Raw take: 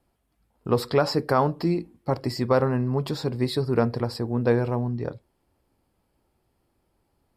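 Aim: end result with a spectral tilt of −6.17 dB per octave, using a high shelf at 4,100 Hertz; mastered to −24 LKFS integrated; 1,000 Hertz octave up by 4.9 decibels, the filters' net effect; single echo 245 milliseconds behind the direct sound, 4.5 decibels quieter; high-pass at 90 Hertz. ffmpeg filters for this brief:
ffmpeg -i in.wav -af "highpass=90,equalizer=frequency=1000:width_type=o:gain=6.5,highshelf=frequency=4100:gain=-5,aecho=1:1:245:0.596,volume=-1dB" out.wav

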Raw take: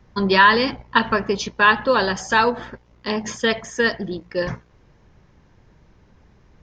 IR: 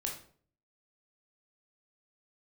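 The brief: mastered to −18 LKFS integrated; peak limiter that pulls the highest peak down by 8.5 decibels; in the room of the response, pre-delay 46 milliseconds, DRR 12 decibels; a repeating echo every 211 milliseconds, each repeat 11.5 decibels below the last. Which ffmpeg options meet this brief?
-filter_complex "[0:a]alimiter=limit=-10.5dB:level=0:latency=1,aecho=1:1:211|422|633:0.266|0.0718|0.0194,asplit=2[link_01][link_02];[1:a]atrim=start_sample=2205,adelay=46[link_03];[link_02][link_03]afir=irnorm=-1:irlink=0,volume=-13dB[link_04];[link_01][link_04]amix=inputs=2:normalize=0,volume=4.5dB"

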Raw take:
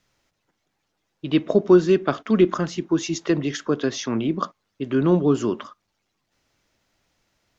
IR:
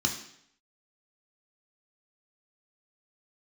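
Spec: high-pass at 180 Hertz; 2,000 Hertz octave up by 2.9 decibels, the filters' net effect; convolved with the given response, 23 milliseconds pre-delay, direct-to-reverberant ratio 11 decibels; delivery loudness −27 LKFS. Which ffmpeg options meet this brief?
-filter_complex "[0:a]highpass=180,equalizer=frequency=2000:width_type=o:gain=4,asplit=2[link_01][link_02];[1:a]atrim=start_sample=2205,adelay=23[link_03];[link_02][link_03]afir=irnorm=-1:irlink=0,volume=-18.5dB[link_04];[link_01][link_04]amix=inputs=2:normalize=0,volume=-6dB"

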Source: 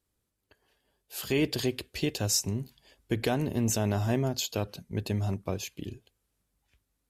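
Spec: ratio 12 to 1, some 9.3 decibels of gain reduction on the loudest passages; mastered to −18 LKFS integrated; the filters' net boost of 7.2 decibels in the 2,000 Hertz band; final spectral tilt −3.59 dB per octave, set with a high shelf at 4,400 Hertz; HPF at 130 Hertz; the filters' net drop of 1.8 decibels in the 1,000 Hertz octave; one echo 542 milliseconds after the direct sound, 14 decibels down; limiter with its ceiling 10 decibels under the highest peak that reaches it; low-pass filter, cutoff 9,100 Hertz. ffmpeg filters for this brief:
ffmpeg -i in.wav -af "highpass=130,lowpass=9100,equalizer=frequency=1000:width_type=o:gain=-5,equalizer=frequency=2000:width_type=o:gain=8.5,highshelf=frequency=4400:gain=8,acompressor=threshold=-27dB:ratio=12,alimiter=level_in=0.5dB:limit=-24dB:level=0:latency=1,volume=-0.5dB,aecho=1:1:542:0.2,volume=18dB" out.wav

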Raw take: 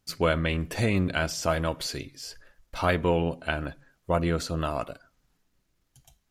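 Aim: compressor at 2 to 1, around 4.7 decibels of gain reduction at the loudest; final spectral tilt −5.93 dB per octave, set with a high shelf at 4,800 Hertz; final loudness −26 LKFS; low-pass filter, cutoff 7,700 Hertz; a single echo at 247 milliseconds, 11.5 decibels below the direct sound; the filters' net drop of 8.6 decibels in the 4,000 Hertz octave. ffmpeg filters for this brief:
ffmpeg -i in.wav -af "lowpass=7700,equalizer=frequency=4000:width_type=o:gain=-7,highshelf=frequency=4800:gain=-9,acompressor=threshold=-28dB:ratio=2,aecho=1:1:247:0.266,volume=6dB" out.wav

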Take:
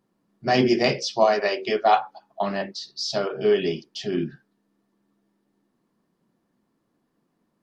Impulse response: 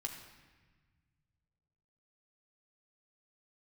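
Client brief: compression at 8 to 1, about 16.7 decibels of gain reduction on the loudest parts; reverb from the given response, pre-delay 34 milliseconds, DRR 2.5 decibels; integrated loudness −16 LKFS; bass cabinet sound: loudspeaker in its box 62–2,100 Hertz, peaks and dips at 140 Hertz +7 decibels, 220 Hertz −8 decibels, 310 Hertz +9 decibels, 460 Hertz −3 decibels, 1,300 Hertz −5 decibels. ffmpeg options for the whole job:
-filter_complex "[0:a]acompressor=threshold=-31dB:ratio=8,asplit=2[link_01][link_02];[1:a]atrim=start_sample=2205,adelay=34[link_03];[link_02][link_03]afir=irnorm=-1:irlink=0,volume=-1.5dB[link_04];[link_01][link_04]amix=inputs=2:normalize=0,highpass=frequency=62:width=0.5412,highpass=frequency=62:width=1.3066,equalizer=frequency=140:width_type=q:width=4:gain=7,equalizer=frequency=220:width_type=q:width=4:gain=-8,equalizer=frequency=310:width_type=q:width=4:gain=9,equalizer=frequency=460:width_type=q:width=4:gain=-3,equalizer=frequency=1300:width_type=q:width=4:gain=-5,lowpass=frequency=2100:width=0.5412,lowpass=frequency=2100:width=1.3066,volume=18.5dB"

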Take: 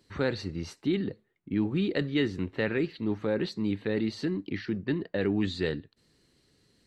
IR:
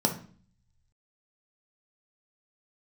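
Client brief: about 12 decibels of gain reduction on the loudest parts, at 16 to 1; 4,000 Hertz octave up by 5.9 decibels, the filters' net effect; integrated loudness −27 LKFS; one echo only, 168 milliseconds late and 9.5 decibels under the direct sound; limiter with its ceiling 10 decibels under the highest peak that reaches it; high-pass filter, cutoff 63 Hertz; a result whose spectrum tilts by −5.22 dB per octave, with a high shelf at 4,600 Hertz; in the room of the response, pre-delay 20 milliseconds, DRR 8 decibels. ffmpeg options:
-filter_complex "[0:a]highpass=63,equalizer=frequency=4000:width_type=o:gain=3.5,highshelf=frequency=4600:gain=7.5,acompressor=threshold=-34dB:ratio=16,alimiter=level_in=6dB:limit=-24dB:level=0:latency=1,volume=-6dB,aecho=1:1:168:0.335,asplit=2[link_01][link_02];[1:a]atrim=start_sample=2205,adelay=20[link_03];[link_02][link_03]afir=irnorm=-1:irlink=0,volume=-18dB[link_04];[link_01][link_04]amix=inputs=2:normalize=0,volume=11dB"

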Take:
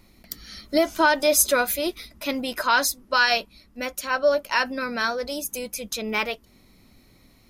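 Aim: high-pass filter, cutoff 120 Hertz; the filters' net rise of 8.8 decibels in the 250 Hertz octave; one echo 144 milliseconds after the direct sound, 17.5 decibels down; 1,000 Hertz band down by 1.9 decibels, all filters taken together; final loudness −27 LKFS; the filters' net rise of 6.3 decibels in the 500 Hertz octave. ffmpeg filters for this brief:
ffmpeg -i in.wav -af "highpass=120,equalizer=frequency=250:width_type=o:gain=8.5,equalizer=frequency=500:width_type=o:gain=8,equalizer=frequency=1000:width_type=o:gain=-5.5,aecho=1:1:144:0.133,volume=-7dB" out.wav

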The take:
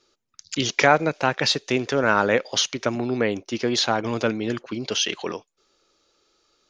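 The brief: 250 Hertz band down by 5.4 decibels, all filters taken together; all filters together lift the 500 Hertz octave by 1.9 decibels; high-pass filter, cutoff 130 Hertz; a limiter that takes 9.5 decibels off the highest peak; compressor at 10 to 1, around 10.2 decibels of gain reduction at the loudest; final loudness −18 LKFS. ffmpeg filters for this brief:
ffmpeg -i in.wav -af "highpass=130,equalizer=frequency=250:width_type=o:gain=-8.5,equalizer=frequency=500:width_type=o:gain=4.5,acompressor=threshold=-20dB:ratio=10,volume=10.5dB,alimiter=limit=-5.5dB:level=0:latency=1" out.wav

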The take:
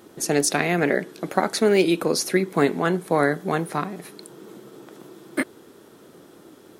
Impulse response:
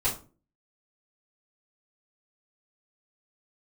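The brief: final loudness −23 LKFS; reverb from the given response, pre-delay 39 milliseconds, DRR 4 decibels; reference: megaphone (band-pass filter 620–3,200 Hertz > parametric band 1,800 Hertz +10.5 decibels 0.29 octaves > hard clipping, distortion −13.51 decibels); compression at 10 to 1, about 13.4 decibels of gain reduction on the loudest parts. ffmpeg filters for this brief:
-filter_complex "[0:a]acompressor=threshold=-28dB:ratio=10,asplit=2[link_01][link_02];[1:a]atrim=start_sample=2205,adelay=39[link_03];[link_02][link_03]afir=irnorm=-1:irlink=0,volume=-13dB[link_04];[link_01][link_04]amix=inputs=2:normalize=0,highpass=620,lowpass=3200,equalizer=frequency=1800:width_type=o:width=0.29:gain=10.5,asoftclip=type=hard:threshold=-26.5dB,volume=13dB"

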